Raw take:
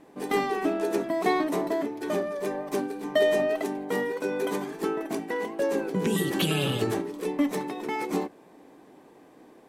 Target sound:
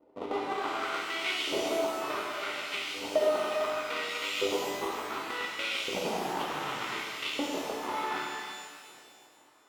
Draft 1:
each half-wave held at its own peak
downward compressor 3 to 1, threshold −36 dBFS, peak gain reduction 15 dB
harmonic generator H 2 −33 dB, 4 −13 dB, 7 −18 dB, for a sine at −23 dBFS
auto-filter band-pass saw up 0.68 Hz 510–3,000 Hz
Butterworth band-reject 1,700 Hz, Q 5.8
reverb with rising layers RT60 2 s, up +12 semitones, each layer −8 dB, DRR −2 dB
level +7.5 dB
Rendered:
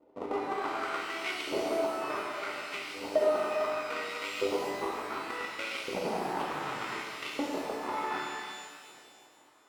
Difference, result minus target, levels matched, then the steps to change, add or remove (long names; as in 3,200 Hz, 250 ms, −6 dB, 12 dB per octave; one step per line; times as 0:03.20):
4,000 Hz band −5.0 dB
add after downward compressor: dynamic equaliser 3,400 Hz, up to +6 dB, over −54 dBFS, Q 1.8